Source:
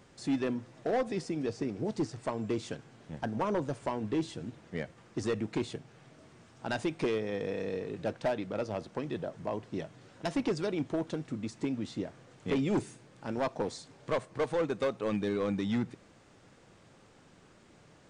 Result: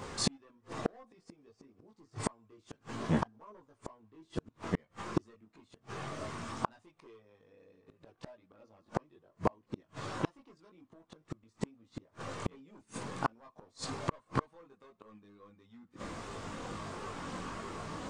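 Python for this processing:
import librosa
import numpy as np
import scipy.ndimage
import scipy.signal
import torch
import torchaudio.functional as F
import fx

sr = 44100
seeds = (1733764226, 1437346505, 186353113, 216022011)

y = fx.chorus_voices(x, sr, voices=6, hz=0.24, base_ms=20, depth_ms=2.6, mix_pct=50)
y = fx.gate_flip(y, sr, shuts_db=-34.0, range_db=-42)
y = fx.peak_eq(y, sr, hz=1100.0, db=10.0, octaves=0.42)
y = y * librosa.db_to_amplitude(17.5)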